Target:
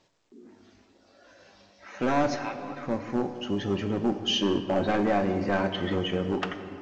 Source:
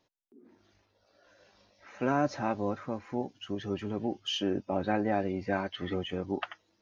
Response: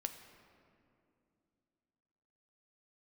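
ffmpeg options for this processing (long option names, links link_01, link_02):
-filter_complex "[0:a]asoftclip=type=tanh:threshold=-19.5dB,asettb=1/sr,asplit=3[link_01][link_02][link_03];[link_01]atrim=end=2.364[link_04];[link_02]atrim=start=2.36:end=2.83,asetpts=PTS-STARTPTS,afade=type=in:duration=0.004:curve=qsin,afade=type=out:start_time=0.466:duration=0.004:curve=qsin,bandpass=frequency=2800:width_type=q:width=0.96:csg=0[link_05];[link_03]atrim=start=2.826[link_06];[link_04][link_05]acrossfade=duration=0.004:curve1=hsin:curve2=qsin[link_07];[link_07][link_06]acrossfade=duration=0.004:curve1=qsin:curve2=hsin,asoftclip=type=hard:threshold=-26dB[link_08];[1:a]atrim=start_sample=2205[link_09];[link_08][link_09]afir=irnorm=-1:irlink=0,volume=8.5dB" -ar 16000 -c:a pcm_alaw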